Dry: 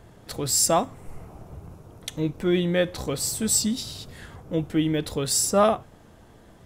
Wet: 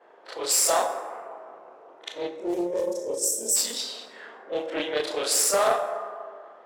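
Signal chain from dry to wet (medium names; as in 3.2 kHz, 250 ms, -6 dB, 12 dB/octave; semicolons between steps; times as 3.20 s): short-time spectra conjugated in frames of 80 ms; Chebyshev shaper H 6 -21 dB, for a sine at -10.5 dBFS; high-pass 450 Hz 24 dB/octave; level-controlled noise filter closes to 1.8 kHz, open at -26 dBFS; treble shelf 11 kHz +8 dB; peak limiter -18 dBFS, peak gain reduction 8 dB; time-frequency box 2.29–3.56 s, 660–5300 Hz -24 dB; plate-style reverb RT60 2.1 s, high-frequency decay 0.35×, DRR 5 dB; loudspeaker Doppler distortion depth 0.22 ms; trim +6 dB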